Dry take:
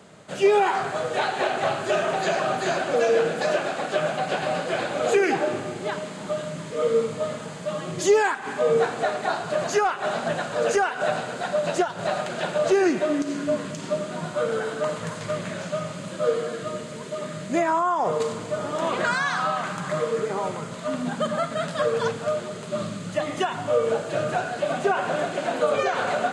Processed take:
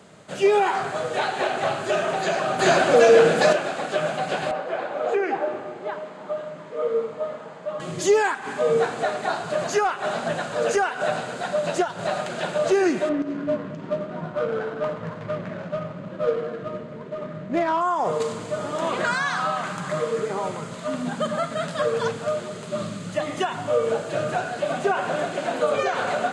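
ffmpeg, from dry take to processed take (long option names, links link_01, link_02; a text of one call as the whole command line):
ffmpeg -i in.wav -filter_complex "[0:a]asettb=1/sr,asplit=3[link_01][link_02][link_03];[link_01]atrim=end=2.594[link_04];[link_02]atrim=start=2.59:end=3.53,asetpts=PTS-STARTPTS,afade=type=in:duration=0.004:curve=qsin,afade=type=out:start_time=0.936:duration=0.004:curve=qsin,acontrast=89[link_05];[link_03]atrim=start=3.526[link_06];[link_04][link_05]acrossfade=duration=0.004:curve1=hsin:curve2=qsin[link_07];[link_07][link_06]acrossfade=duration=0.004:curve1=qsin:curve2=hsin,asettb=1/sr,asplit=3[link_08][link_09][link_10];[link_08]atrim=end=4.514[link_11];[link_09]atrim=start=4.51:end=7.8,asetpts=PTS-STARTPTS,afade=type=in:duration=0.004:curve=qsin,afade=type=out:start_time=3.286:duration=0.004:curve=qsin,bandpass=frequency=770:width_type=q:width=0.77[link_12];[link_10]atrim=start=7.796[link_13];[link_11][link_12]acrossfade=duration=0.004:curve1=hsin:curve2=qsin[link_14];[link_14][link_13]acrossfade=duration=0.004:curve1=qsin:curve2=hsin,asettb=1/sr,asplit=3[link_15][link_16][link_17];[link_15]atrim=end=13.094[link_18];[link_16]atrim=start=13.09:end=17.81,asetpts=PTS-STARTPTS,afade=type=in:duration=0.004:curve=qsin,afade=type=out:start_time=4.716:duration=0.004:curve=qsin,adynamicsmooth=sensitivity=1.5:basefreq=1400[link_19];[link_17]atrim=start=17.806[link_20];[link_18][link_19]acrossfade=duration=0.004:curve1=hsin:curve2=qsin[link_21];[link_21][link_20]acrossfade=duration=0.004:curve1=qsin:curve2=hsin" out.wav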